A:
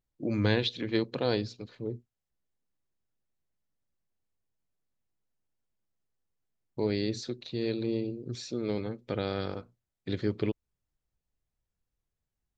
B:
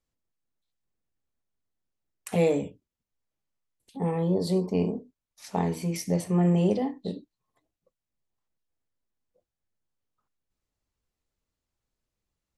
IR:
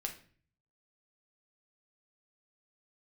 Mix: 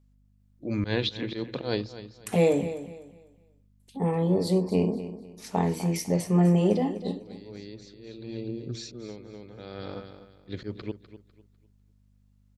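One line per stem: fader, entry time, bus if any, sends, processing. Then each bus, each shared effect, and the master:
+1.5 dB, 0.40 s, no send, echo send −14 dB, volume swells 121 ms; automatic ducking −21 dB, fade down 0.50 s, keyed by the second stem
+1.5 dB, 0.00 s, no send, echo send −13 dB, mains hum 50 Hz, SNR 32 dB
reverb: not used
echo: repeating echo 250 ms, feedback 29%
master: no processing

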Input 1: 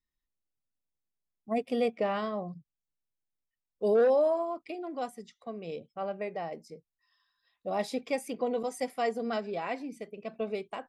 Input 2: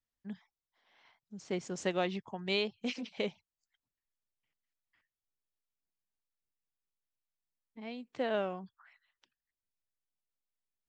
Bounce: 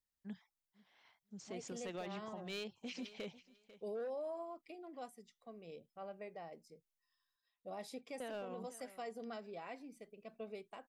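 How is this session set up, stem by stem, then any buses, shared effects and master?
−13.5 dB, 0.00 s, no send, no echo send, high-shelf EQ 7,600 Hz +8 dB
−4.5 dB, 0.00 s, muted 0:07.36–0:08.20, no send, echo send −23 dB, high-shelf EQ 5,500 Hz +5.5 dB; hard clipping −25.5 dBFS, distortion −16 dB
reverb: not used
echo: repeating echo 495 ms, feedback 18%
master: brickwall limiter −37 dBFS, peak gain reduction 11 dB

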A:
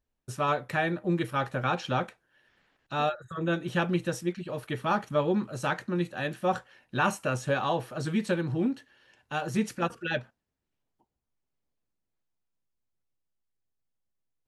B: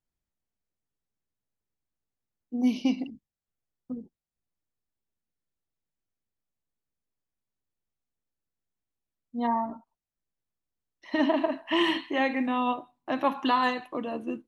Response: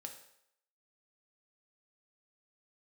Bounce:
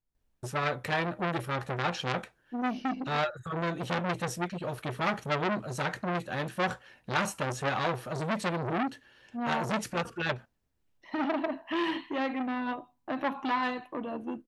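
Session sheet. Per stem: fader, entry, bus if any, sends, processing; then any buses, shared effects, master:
+2.5 dB, 0.15 s, no send, no processing
−2.0 dB, 0.00 s, no send, high-shelf EQ 2,700 Hz −7 dB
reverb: not used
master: low-shelf EQ 100 Hz +7 dB; saturating transformer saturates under 2,100 Hz

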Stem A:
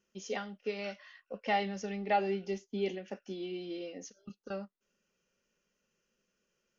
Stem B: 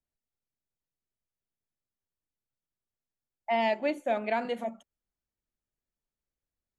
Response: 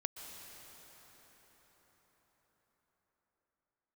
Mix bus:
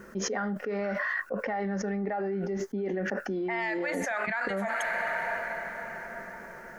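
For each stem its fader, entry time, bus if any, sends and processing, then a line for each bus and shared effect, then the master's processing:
−6.5 dB, 0.00 s, no send, high-shelf EQ 2,400 Hz −9 dB
−2.5 dB, 0.00 s, send −15 dB, Bessel high-pass filter 2,400 Hz, order 2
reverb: on, RT60 5.9 s, pre-delay 113 ms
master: high shelf with overshoot 2,200 Hz −8.5 dB, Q 3; envelope flattener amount 100%

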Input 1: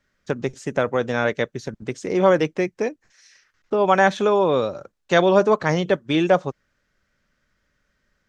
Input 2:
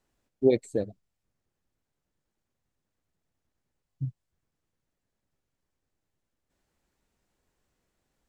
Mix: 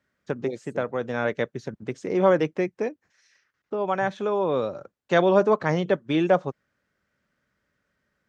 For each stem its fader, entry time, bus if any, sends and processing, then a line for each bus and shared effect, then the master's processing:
−2.5 dB, 0.00 s, no send, high-shelf EQ 3,500 Hz −9 dB; automatic ducking −6 dB, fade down 1.35 s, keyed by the second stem
−10.5 dB, 0.00 s, no send, no processing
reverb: not used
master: high-pass filter 87 Hz

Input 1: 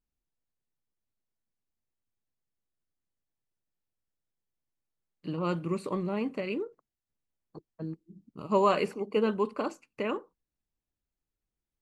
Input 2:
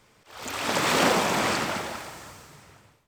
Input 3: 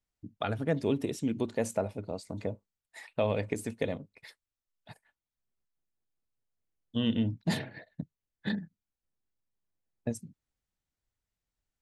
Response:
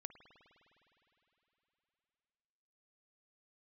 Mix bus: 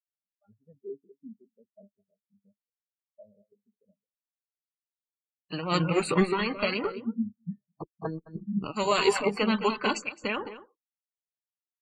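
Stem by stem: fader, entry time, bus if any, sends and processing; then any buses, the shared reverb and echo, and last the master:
+2.5 dB, 0.25 s, no bus, no send, echo send −4 dB, noise gate −50 dBFS, range −20 dB; every bin compressed towards the loudest bin 10 to 1
muted
−2.0 dB, 0.00 s, bus A, send −21 dB, echo send −18.5 dB, no processing
bus A: 0.0 dB, tuned comb filter 200 Hz, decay 0.16 s, harmonics all, mix 80%; brickwall limiter −31 dBFS, peak gain reduction 5.5 dB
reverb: on, RT60 3.6 s, pre-delay 51 ms
echo: single-tap delay 214 ms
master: every bin expanded away from the loudest bin 4 to 1

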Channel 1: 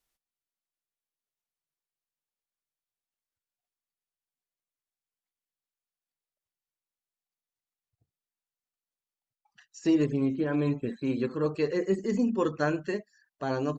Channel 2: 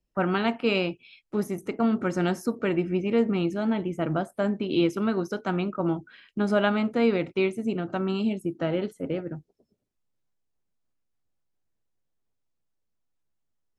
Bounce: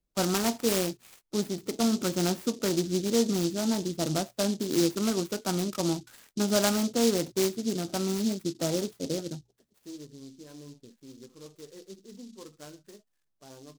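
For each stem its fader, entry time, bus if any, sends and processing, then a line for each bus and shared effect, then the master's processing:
−19.5 dB, 0.00 s, no send, no processing
−2.0 dB, 0.00 s, no send, mains-hum notches 60/120 Hz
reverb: not used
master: short delay modulated by noise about 5,000 Hz, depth 0.12 ms

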